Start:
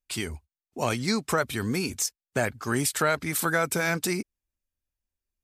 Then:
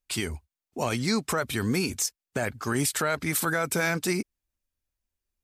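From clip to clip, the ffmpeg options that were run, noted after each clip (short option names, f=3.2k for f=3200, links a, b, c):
-af "alimiter=limit=-17.5dB:level=0:latency=1:release=41,volume=2dB"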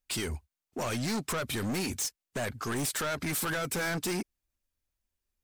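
-af "asoftclip=type=hard:threshold=-29dB"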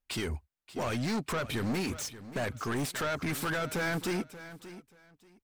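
-filter_complex "[0:a]asplit=2[a][b];[b]adynamicsmooth=sensitivity=4.5:basefreq=3.8k,volume=2dB[c];[a][c]amix=inputs=2:normalize=0,aecho=1:1:582|1164:0.178|0.0356,volume=-6.5dB"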